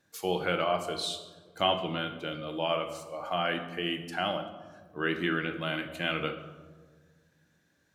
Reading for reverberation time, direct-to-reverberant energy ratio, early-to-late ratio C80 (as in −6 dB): 1.5 s, 5.5 dB, 11.0 dB